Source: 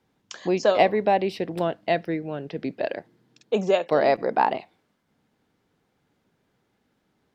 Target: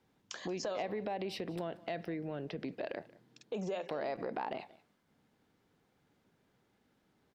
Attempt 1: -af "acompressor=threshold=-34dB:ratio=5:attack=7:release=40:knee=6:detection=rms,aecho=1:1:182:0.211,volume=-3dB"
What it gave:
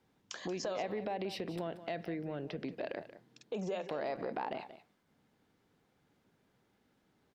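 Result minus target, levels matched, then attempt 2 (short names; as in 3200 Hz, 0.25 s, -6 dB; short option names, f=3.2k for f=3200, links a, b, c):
echo-to-direct +7.5 dB
-af "acompressor=threshold=-34dB:ratio=5:attack=7:release=40:knee=6:detection=rms,aecho=1:1:182:0.0891,volume=-3dB"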